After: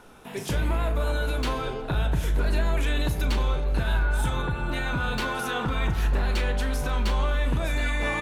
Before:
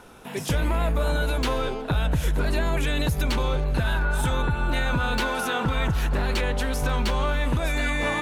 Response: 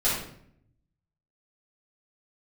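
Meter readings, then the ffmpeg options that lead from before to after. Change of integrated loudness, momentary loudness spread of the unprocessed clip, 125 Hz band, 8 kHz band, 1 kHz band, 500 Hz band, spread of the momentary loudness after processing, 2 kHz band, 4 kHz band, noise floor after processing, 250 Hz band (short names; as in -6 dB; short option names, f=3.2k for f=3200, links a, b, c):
-1.5 dB, 2 LU, -1.5 dB, -3.5 dB, -3.0 dB, -3.0 dB, 3 LU, -2.5 dB, -3.0 dB, -36 dBFS, -3.0 dB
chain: -filter_complex "[0:a]asplit=2[a][b];[b]adelay=37,volume=-11dB[c];[a][c]amix=inputs=2:normalize=0,asplit=2[d][e];[1:a]atrim=start_sample=2205,asetrate=37485,aresample=44100,lowpass=5.9k[f];[e][f]afir=irnorm=-1:irlink=0,volume=-22dB[g];[d][g]amix=inputs=2:normalize=0,volume=-4dB"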